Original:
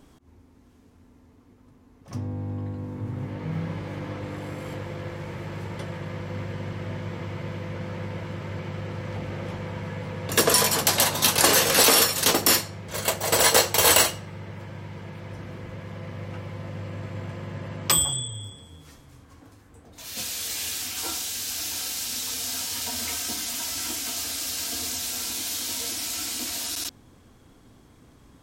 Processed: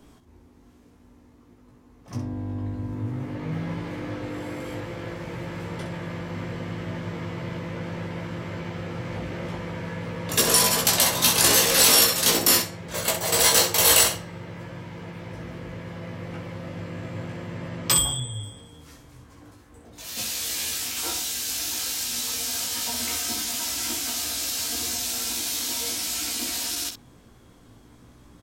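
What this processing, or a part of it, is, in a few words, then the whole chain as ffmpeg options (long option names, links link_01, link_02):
one-band saturation: -filter_complex "[0:a]acrossover=split=210|2600[link_01][link_02][link_03];[link_02]asoftclip=type=tanh:threshold=-24dB[link_04];[link_01][link_04][link_03]amix=inputs=3:normalize=0,asettb=1/sr,asplit=3[link_05][link_06][link_07];[link_05]atrim=end=2.184[link_08];[link_06]atrim=start=2.18:end=2.93,asetpts=PTS-STARTPTS,afade=type=in:duration=0.004:curve=qsin,afade=type=out:start_time=0.746:duration=0.004:curve=qsin,asubboost=boost=9.5:cutoff=160[link_09];[link_07]atrim=start=2.926[link_10];[link_08][link_09]acrossfade=duration=0.004:curve1=hsin:curve2=qsin[link_11];[link_11][link_10]acrossfade=duration=0.004:curve1=qsin:curve2=hsin,aecho=1:1:17|64:0.631|0.398"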